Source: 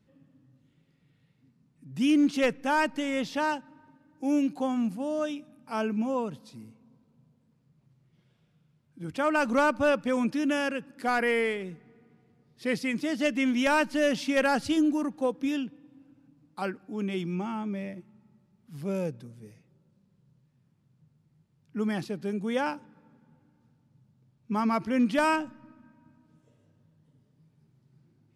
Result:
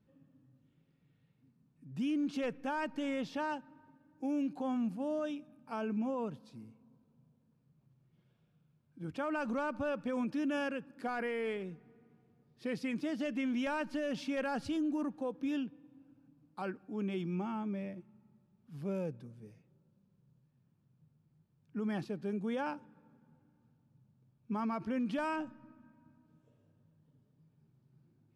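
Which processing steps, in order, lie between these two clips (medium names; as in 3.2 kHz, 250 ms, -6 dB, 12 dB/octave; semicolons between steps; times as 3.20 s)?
treble shelf 3.9 kHz -10 dB; band-stop 2 kHz, Q 12; peak limiter -24 dBFS, peak gain reduction 8 dB; trim -4.5 dB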